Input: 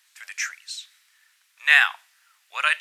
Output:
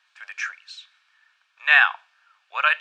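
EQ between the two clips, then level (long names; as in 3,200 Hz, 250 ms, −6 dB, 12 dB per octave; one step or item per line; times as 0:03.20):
high-pass filter 490 Hz 12 dB per octave
Butterworth band-reject 2,000 Hz, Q 7
head-to-tape spacing loss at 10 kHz 33 dB
+8.5 dB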